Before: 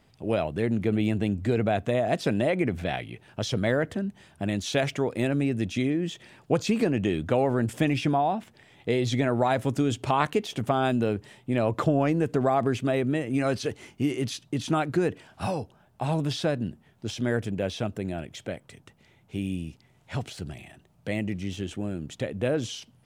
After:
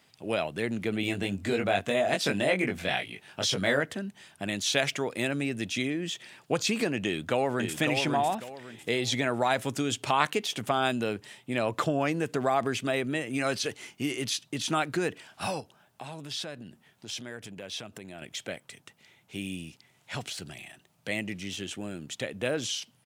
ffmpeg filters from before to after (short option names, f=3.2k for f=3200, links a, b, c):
-filter_complex "[0:a]asettb=1/sr,asplit=3[a][b][c];[a]atrim=end=1.014[d];[b]atrim=start=1.01:end=3.81,asetpts=PTS-STARTPTS,afade=t=in:d=0.004:c=qsin,afade=t=out:st=2.796:d=0.004:c=qsin,asplit=2[e][f];[f]adelay=21,volume=-3.5dB[g];[e][g]amix=inputs=2:normalize=0,atrim=end_sample=123480[h];[c]atrim=start=3.806[i];[d][h]acrossfade=d=0.004:c1=hsin:c2=qsin[j];[j][i]acrossfade=d=0.004:c1=qsin:c2=hsin,asplit=2[k][l];[l]afade=t=in:st=7.04:d=0.01,afade=t=out:st=7.79:d=0.01,aecho=0:1:550|1100|1650|2200:0.530884|0.159265|0.0477796|0.0143339[m];[k][m]amix=inputs=2:normalize=0,asettb=1/sr,asplit=3[n][o][p];[n]atrim=end=15.604[q];[o]atrim=start=15.6:end=18.22,asetpts=PTS-STARTPTS,afade=t=in:d=0.004:c=qsin,afade=t=out:st=2.616:d=0.004:c=qsin,acompressor=threshold=-36dB:ratio=3:attack=3.2:release=140:knee=1:detection=peak[r];[p]atrim=start=18.216[s];[q][r]acrossfade=d=0.004:c1=hsin:c2=qsin[t];[t][s]acrossfade=d=0.004:c1=qsin:c2=hsin,highpass=120,tiltshelf=f=1.1k:g=-6"